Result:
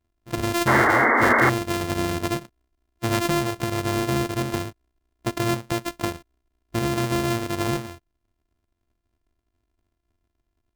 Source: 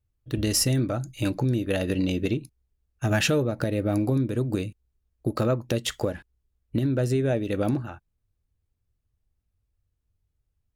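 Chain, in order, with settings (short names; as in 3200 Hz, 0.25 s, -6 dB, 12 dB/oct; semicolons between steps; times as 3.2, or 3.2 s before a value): sample sorter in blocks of 128 samples; painted sound noise, 0.67–1.5, 220–2200 Hz -18 dBFS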